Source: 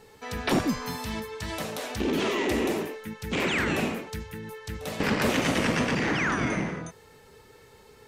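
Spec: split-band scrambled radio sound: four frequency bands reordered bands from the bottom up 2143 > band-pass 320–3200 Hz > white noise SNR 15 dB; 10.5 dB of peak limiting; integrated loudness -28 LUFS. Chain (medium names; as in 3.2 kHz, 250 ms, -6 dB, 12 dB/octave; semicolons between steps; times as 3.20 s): peak limiter -23.5 dBFS; four frequency bands reordered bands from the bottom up 2143; band-pass 320–3200 Hz; white noise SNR 15 dB; trim +4 dB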